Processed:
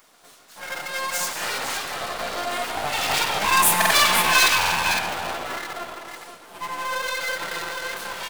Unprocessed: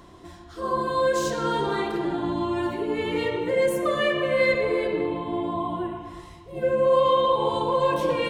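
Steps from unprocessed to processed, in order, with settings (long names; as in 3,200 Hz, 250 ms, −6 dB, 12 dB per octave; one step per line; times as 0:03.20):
source passing by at 0:03.75, 6 m/s, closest 5.4 metres
multi-tap delay 125/189/281/508 ms −18/−11/−18/−8 dB
full-wave rectification
RIAA equalisation recording
buffer that repeats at 0:03.77/0:04.58, samples 2,048, times 2
level +8 dB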